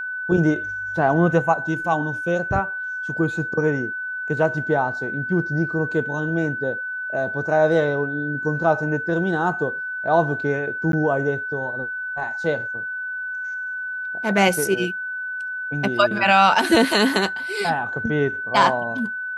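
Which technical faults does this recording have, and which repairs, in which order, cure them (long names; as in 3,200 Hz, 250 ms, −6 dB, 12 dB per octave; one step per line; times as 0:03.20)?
whistle 1,500 Hz −26 dBFS
0:10.92–0:10.93: drop-out 12 ms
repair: notch filter 1,500 Hz, Q 30
repair the gap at 0:10.92, 12 ms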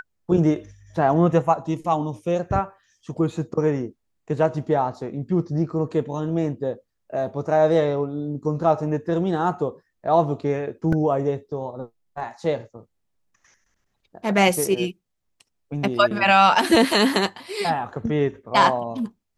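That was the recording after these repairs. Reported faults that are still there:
none of them is left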